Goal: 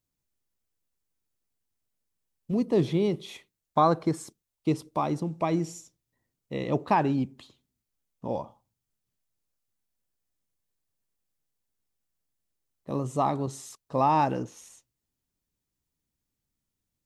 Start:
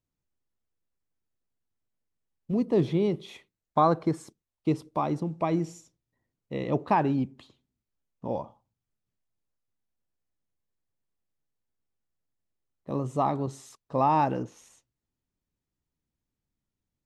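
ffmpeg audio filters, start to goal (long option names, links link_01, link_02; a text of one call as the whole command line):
ffmpeg -i in.wav -af "highshelf=frequency=4300:gain=8.5" out.wav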